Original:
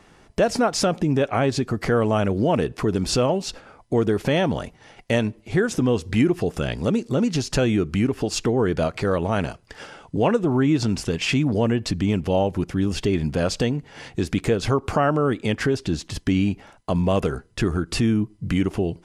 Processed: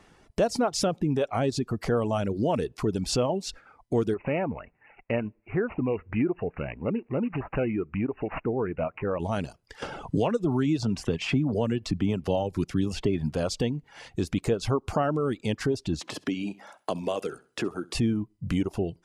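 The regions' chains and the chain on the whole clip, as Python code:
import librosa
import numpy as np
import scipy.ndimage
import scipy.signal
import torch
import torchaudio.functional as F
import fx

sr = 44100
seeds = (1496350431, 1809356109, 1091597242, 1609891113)

y = fx.chain(x, sr, fx.low_shelf(hz=330.0, db=-4.0),
    fx.resample_bad(factor=8, down='none', up='filtered'),
    fx.lowpass(hz=9300.0, slope=12), at=(4.14, 9.2))
y = fx.chain(y, sr, fx.high_shelf(hz=5900.0, db=-6.0),
    fx.band_squash(depth_pct=70), at=(9.82, 13.32))
y = fx.chain(y, sr, fx.highpass(hz=290.0, slope=12),
    fx.room_flutter(wall_m=11.2, rt60_s=0.32),
    fx.band_squash(depth_pct=70), at=(16.01, 17.95))
y = fx.dereverb_blind(y, sr, rt60_s=0.74)
y = fx.dynamic_eq(y, sr, hz=1800.0, q=1.4, threshold_db=-42.0, ratio=4.0, max_db=-6)
y = y * 10.0 ** (-4.0 / 20.0)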